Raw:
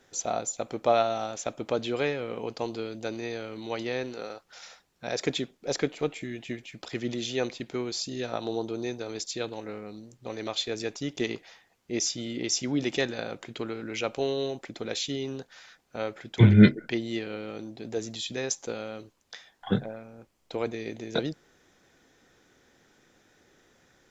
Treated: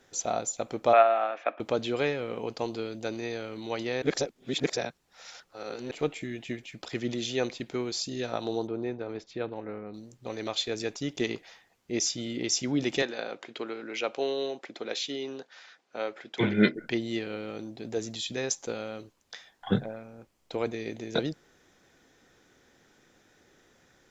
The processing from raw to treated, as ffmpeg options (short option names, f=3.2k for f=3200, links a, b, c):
-filter_complex "[0:a]asettb=1/sr,asplit=3[a][b][c];[a]atrim=end=0.934[d];[b]atrim=start=0.93:end=1.6,asetpts=PTS-STARTPTS,afade=t=in:d=0.004:c=qsin,afade=t=out:st=0.666:d=0.004:c=qsin,highpass=f=310:w=0.5412,highpass=f=310:w=1.3066,equalizer=f=400:t=q:w=4:g=-5,equalizer=f=680:t=q:w=4:g=6,equalizer=f=1.2k:t=q:w=4:g=8,equalizer=f=1.7k:t=q:w=4:g=8,equalizer=f=2.4k:t=q:w=4:g=7,lowpass=f=2.8k:w=0.5412,lowpass=f=2.8k:w=1.3066[e];[c]atrim=start=1.596[f];[d][e]acrossfade=d=0.004:c1=hsin:c2=qsin[g];[g][f]acrossfade=d=0.004:c1=qsin:c2=hsin,asettb=1/sr,asplit=3[h][i][j];[h]atrim=end=8.674[k];[i]atrim=start=8.67:end=9.94,asetpts=PTS-STARTPTS,afade=t=in:d=0.004:c=qsin,afade=t=out:st=1.266:d=0.004:c=qsin,lowpass=1.9k[l];[j]atrim=start=9.936[m];[k][l]acrossfade=d=0.004:c1=hsin:c2=qsin[n];[n][m]acrossfade=d=0.004:c1=qsin:c2=hsin,asettb=1/sr,asplit=3[o][p][q];[o]atrim=end=13.024[r];[p]atrim=start=13.02:end=16.75,asetpts=PTS-STARTPTS,afade=t=in:d=0.004:c=qsin,afade=t=out:st=3.726:d=0.004:c=qsin,highpass=310,lowpass=5.6k[s];[q]atrim=start=16.746[t];[r][s]acrossfade=d=0.004:c1=hsin:c2=qsin[u];[u][t]acrossfade=d=0.004:c1=qsin:c2=hsin,asplit=3[v][w][x];[v]atrim=end=4.022[y];[w]atrim=start=4.018:end=5.912,asetpts=PTS-STARTPTS,areverse[z];[x]atrim=start=5.908[aa];[y][z]acrossfade=d=0.004:c1=hsin:c2=hsin[ab];[ab][aa]acrossfade=d=0.004:c1=hsin:c2=hsin"